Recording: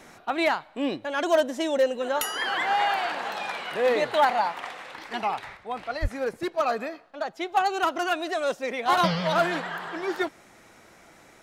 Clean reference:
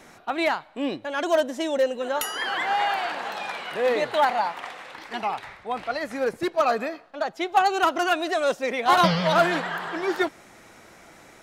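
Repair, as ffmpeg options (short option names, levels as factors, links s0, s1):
-filter_complex "[0:a]asplit=3[s0][s1][s2];[s0]afade=t=out:st=6.01:d=0.02[s3];[s1]highpass=f=140:w=0.5412,highpass=f=140:w=1.3066,afade=t=in:st=6.01:d=0.02,afade=t=out:st=6.13:d=0.02[s4];[s2]afade=t=in:st=6.13:d=0.02[s5];[s3][s4][s5]amix=inputs=3:normalize=0,asetnsamples=n=441:p=0,asendcmd='5.57 volume volume 3.5dB',volume=1"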